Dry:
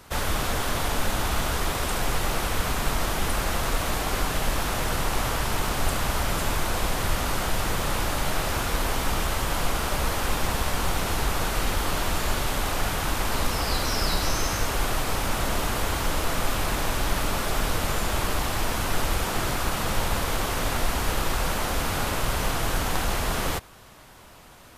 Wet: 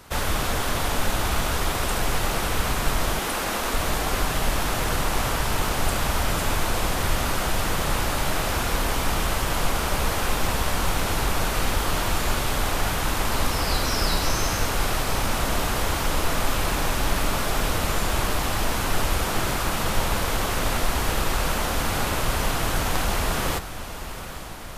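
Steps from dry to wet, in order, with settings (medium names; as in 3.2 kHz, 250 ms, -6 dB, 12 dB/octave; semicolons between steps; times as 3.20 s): rattle on loud lows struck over -28 dBFS, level -32 dBFS; 3.19–3.74 s: high-pass 200 Hz 24 dB/octave; echo that smears into a reverb 838 ms, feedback 68%, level -13 dB; trim +1.5 dB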